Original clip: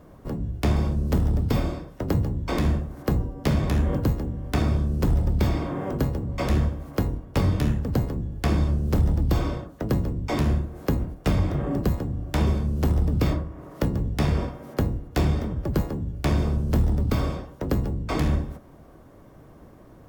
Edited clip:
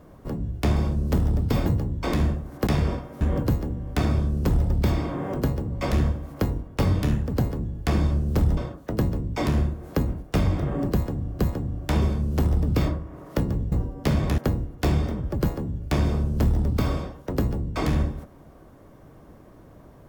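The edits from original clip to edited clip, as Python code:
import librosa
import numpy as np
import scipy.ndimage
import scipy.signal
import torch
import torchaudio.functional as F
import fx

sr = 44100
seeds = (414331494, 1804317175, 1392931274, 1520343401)

y = fx.edit(x, sr, fx.cut(start_s=1.66, length_s=0.45),
    fx.swap(start_s=3.12, length_s=0.66, other_s=14.17, other_length_s=0.54),
    fx.cut(start_s=9.14, length_s=0.35),
    fx.repeat(start_s=11.84, length_s=0.47, count=2), tone=tone)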